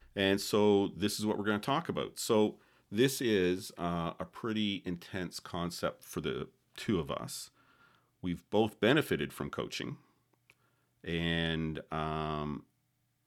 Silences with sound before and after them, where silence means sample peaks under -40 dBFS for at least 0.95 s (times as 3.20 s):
9.93–11.05 s